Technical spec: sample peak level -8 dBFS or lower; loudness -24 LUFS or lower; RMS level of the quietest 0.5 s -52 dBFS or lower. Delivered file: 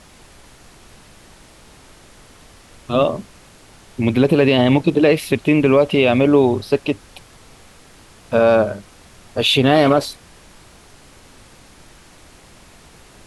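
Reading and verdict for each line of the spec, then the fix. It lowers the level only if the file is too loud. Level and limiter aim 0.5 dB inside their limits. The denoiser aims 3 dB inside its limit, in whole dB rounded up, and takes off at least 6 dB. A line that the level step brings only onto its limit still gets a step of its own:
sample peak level -3.5 dBFS: fail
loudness -16.0 LUFS: fail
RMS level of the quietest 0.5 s -46 dBFS: fail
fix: gain -8.5 dB

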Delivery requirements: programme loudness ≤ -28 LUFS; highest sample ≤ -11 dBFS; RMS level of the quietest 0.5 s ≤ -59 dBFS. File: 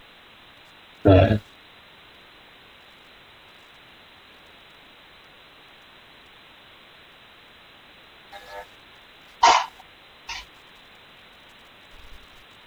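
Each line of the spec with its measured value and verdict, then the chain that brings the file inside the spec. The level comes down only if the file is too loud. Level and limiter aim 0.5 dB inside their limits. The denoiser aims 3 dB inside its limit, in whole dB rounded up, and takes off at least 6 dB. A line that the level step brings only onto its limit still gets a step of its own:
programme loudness -20.5 LUFS: fail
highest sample -5.0 dBFS: fail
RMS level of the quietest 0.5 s -50 dBFS: fail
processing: denoiser 6 dB, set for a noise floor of -50 dBFS; gain -8 dB

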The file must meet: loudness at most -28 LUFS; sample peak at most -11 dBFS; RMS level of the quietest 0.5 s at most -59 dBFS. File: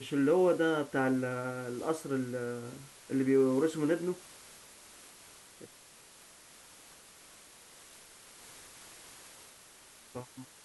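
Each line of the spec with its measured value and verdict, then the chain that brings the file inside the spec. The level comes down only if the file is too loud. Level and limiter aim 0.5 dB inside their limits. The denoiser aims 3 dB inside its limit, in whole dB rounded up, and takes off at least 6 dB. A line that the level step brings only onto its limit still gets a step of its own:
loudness -31.0 LUFS: OK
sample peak -17.5 dBFS: OK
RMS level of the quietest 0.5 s -57 dBFS: fail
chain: denoiser 6 dB, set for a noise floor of -57 dBFS

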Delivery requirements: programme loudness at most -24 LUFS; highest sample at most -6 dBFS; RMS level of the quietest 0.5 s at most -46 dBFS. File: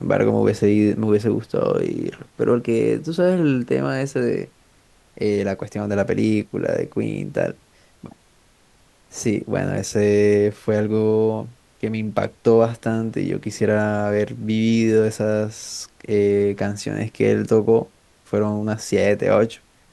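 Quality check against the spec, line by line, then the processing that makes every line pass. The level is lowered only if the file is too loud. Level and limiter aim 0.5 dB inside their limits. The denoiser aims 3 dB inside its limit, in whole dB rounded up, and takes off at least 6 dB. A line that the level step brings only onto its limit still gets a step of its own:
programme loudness -20.5 LUFS: fail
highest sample -4.0 dBFS: fail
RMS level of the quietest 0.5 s -56 dBFS: OK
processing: gain -4 dB

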